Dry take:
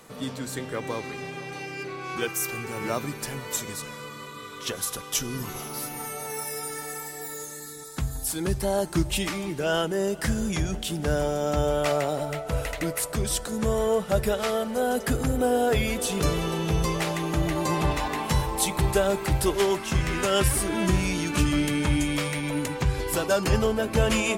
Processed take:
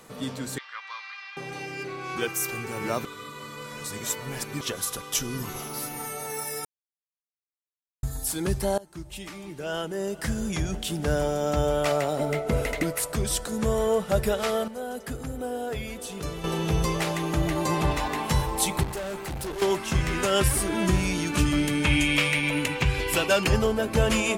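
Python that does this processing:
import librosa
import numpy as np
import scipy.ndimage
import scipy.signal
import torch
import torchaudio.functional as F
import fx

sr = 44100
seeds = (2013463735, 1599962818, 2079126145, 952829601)

y = fx.ellip_bandpass(x, sr, low_hz=1100.0, high_hz=4900.0, order=3, stop_db=70, at=(0.58, 1.37))
y = fx.small_body(y, sr, hz=(240.0, 380.0, 2100.0), ring_ms=45, db=13, at=(12.19, 12.83))
y = fx.tube_stage(y, sr, drive_db=30.0, bias=0.65, at=(18.83, 19.62))
y = fx.peak_eq(y, sr, hz=2600.0, db=12.0, octaves=0.84, at=(21.84, 23.47))
y = fx.edit(y, sr, fx.reverse_span(start_s=3.05, length_s=1.56),
    fx.silence(start_s=6.65, length_s=1.38),
    fx.fade_in_from(start_s=8.78, length_s=2.14, floor_db=-22.0),
    fx.clip_gain(start_s=14.68, length_s=1.76, db=-9.0), tone=tone)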